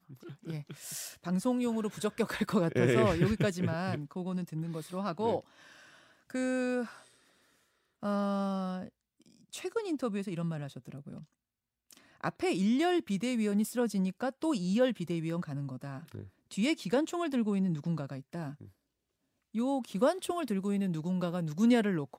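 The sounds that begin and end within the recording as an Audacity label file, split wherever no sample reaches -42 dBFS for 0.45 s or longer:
6.300000	6.950000	sound
8.030000	8.880000	sound
9.530000	11.220000	sound
11.910000	18.650000	sound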